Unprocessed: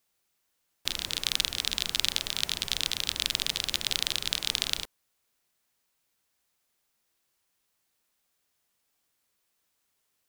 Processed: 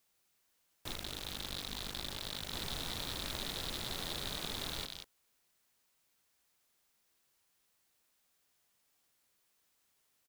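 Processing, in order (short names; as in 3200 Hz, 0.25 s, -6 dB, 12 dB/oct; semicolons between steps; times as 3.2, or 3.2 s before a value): tapped delay 0.168/0.19 s -13.5/-13.5 dB; 0.94–2.53 ring modulator 25 Hz; slew limiter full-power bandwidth 110 Hz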